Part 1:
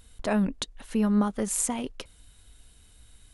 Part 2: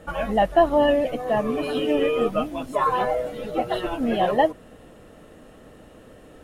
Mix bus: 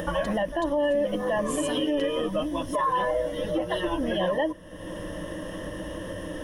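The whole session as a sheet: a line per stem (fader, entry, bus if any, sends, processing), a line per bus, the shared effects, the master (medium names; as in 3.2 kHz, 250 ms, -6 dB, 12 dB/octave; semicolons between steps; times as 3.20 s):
-3.5 dB, 0.00 s, no send, short-mantissa float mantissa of 4-bit; compression, threshold -29 dBFS, peak gain reduction 10 dB
-3.0 dB, 0.00 s, no send, rippled EQ curve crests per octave 1.2, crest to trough 14 dB; upward compressor, threshold -19 dBFS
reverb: none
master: peak limiter -17.5 dBFS, peak gain reduction 10 dB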